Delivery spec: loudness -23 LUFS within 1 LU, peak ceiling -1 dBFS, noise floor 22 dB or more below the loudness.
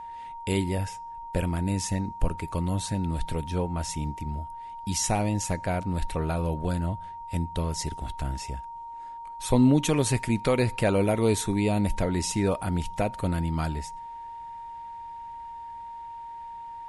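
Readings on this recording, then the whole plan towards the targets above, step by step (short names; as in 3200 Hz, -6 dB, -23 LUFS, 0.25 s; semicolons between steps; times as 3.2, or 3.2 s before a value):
steady tone 930 Hz; tone level -37 dBFS; loudness -28.0 LUFS; peak -10.0 dBFS; loudness target -23.0 LUFS
-> notch 930 Hz, Q 30; gain +5 dB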